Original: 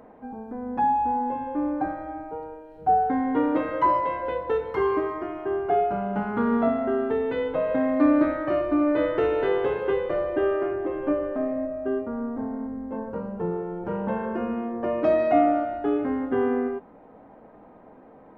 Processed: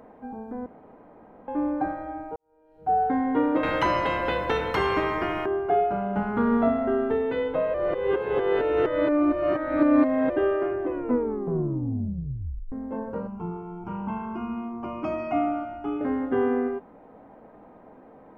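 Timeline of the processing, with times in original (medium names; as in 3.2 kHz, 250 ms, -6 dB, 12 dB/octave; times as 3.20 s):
0.66–1.48 s: room tone
2.36–3.03 s: fade in quadratic
3.63–5.46 s: spectrum-flattening compressor 2:1
6.17–7.16 s: bass shelf 73 Hz +9.5 dB
7.74–10.30 s: reverse
10.81 s: tape stop 1.91 s
13.27–16.01 s: static phaser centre 2.6 kHz, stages 8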